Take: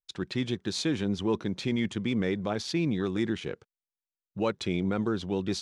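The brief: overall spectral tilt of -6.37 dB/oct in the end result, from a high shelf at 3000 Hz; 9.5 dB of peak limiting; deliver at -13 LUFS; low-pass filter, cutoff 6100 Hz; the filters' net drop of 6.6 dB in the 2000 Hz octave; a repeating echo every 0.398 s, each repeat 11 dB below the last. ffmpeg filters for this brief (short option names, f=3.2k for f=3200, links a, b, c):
-af "lowpass=6.1k,equalizer=f=2k:t=o:g=-5,highshelf=f=3k:g=-8.5,alimiter=level_in=1.5dB:limit=-24dB:level=0:latency=1,volume=-1.5dB,aecho=1:1:398|796|1194:0.282|0.0789|0.0221,volume=23dB"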